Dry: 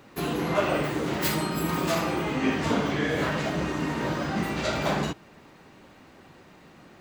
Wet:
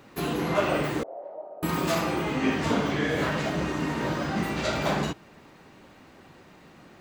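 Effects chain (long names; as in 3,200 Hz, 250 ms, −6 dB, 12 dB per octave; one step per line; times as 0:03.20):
0:01.03–0:01.63: flat-topped band-pass 620 Hz, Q 3.2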